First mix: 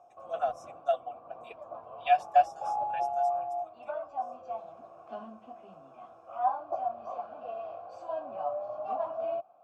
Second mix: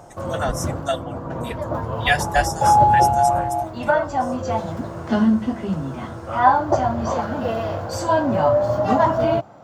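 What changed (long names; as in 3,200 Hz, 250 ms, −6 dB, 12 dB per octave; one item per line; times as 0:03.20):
background +8.5 dB
master: remove formant filter a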